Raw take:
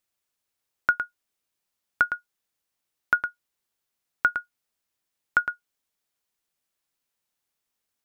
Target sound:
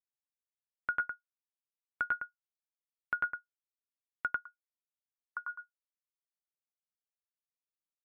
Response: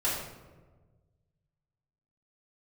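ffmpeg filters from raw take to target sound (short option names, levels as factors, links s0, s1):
-filter_complex "[0:a]asplit=3[s0][s1][s2];[s0]afade=t=out:st=4.26:d=0.02[s3];[s1]bandpass=f=1100:t=q:w=6.7:csg=0,afade=t=in:st=4.26:d=0.02,afade=t=out:st=5.48:d=0.02[s4];[s2]afade=t=in:st=5.48:d=0.02[s5];[s3][s4][s5]amix=inputs=3:normalize=0,afftdn=nr=26:nf=-47,asplit=2[s6][s7];[s7]aecho=0:1:96:0.668[s8];[s6][s8]amix=inputs=2:normalize=0,alimiter=limit=0.2:level=0:latency=1:release=109,volume=0.422"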